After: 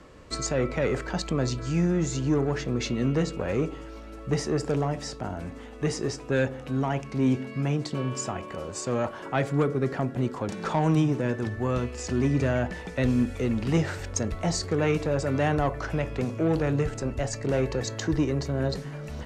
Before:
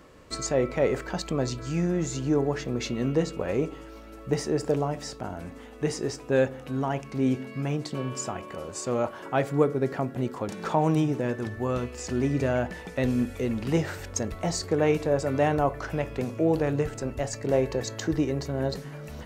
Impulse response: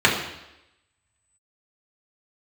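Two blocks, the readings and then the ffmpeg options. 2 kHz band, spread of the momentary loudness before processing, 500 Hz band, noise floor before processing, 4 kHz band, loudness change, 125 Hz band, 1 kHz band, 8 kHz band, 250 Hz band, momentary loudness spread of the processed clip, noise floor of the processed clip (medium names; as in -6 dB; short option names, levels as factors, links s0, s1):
+1.5 dB, 9 LU, -1.5 dB, -44 dBFS, +1.5 dB, +0.5 dB, +3.0 dB, -1.0 dB, +0.5 dB, +1.0 dB, 7 LU, -41 dBFS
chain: -filter_complex "[0:a]lowpass=9200,lowshelf=f=110:g=4.5,acrossover=split=290|1000[s0][s1][s2];[s1]asoftclip=type=tanh:threshold=0.0422[s3];[s0][s3][s2]amix=inputs=3:normalize=0,volume=1.19"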